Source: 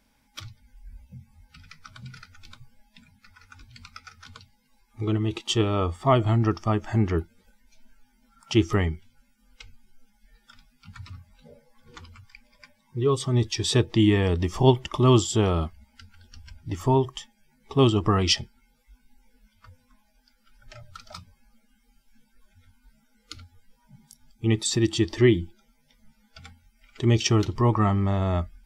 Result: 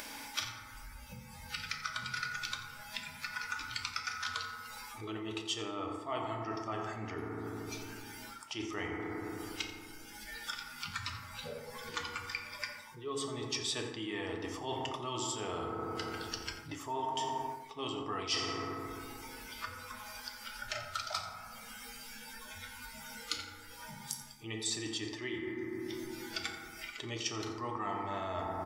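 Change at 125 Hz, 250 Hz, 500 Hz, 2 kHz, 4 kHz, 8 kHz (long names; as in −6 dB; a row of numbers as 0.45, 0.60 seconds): −22.5, −16.0, −14.5, −2.0, −6.5, −6.5 decibels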